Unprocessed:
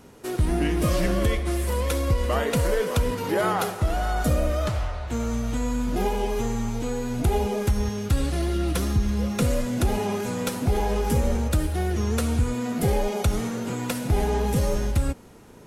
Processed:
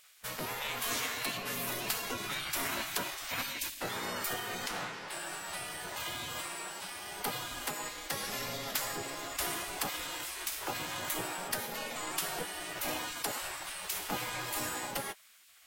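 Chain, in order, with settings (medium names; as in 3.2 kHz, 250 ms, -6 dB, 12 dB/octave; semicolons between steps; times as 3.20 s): spectral gate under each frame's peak -20 dB weak; formant shift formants +4 st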